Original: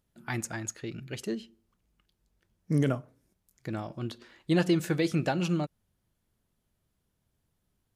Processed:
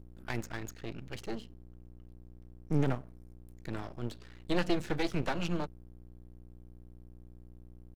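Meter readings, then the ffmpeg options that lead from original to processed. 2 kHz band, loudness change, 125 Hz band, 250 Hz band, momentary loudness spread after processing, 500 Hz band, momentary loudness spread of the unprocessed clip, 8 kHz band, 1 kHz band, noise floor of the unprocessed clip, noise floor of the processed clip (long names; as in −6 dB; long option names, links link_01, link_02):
−3.0 dB, −5.0 dB, −5.0 dB, −6.0 dB, 24 LU, −4.5 dB, 12 LU, −11.0 dB, −2.0 dB, −78 dBFS, −52 dBFS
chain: -filter_complex "[0:a]acrossover=split=200|470|5700[link_01][link_02][link_03][link_04];[link_04]acompressor=threshold=-58dB:ratio=6[link_05];[link_01][link_02][link_03][link_05]amix=inputs=4:normalize=0,aeval=exprs='val(0)+0.00447*(sin(2*PI*60*n/s)+sin(2*PI*2*60*n/s)/2+sin(2*PI*3*60*n/s)/3+sin(2*PI*4*60*n/s)/4+sin(2*PI*5*60*n/s)/5)':channel_layout=same,aeval=exprs='max(val(0),0)':channel_layout=same"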